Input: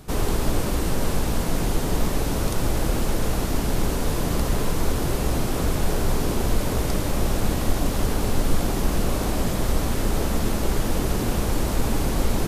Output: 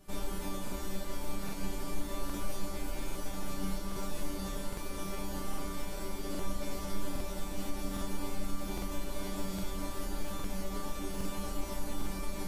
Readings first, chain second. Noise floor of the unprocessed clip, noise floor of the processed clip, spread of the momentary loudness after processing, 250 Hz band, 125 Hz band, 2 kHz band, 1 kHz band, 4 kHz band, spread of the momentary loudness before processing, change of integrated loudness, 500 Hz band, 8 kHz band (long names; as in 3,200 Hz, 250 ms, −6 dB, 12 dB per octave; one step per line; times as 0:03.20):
−26 dBFS, −39 dBFS, 2 LU, −13.0 dB, −18.5 dB, −13.5 dB, −13.0 dB, −12.5 dB, 1 LU, −14.5 dB, −14.5 dB, −13.0 dB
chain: brickwall limiter −17.5 dBFS, peak gain reduction 10 dB
resonators tuned to a chord G3 fifth, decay 0.27 s
flutter between parallel walls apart 5.4 metres, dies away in 0.39 s
regular buffer underruns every 0.81 s, samples 2,048, repeat, from 0:00.63
level +3 dB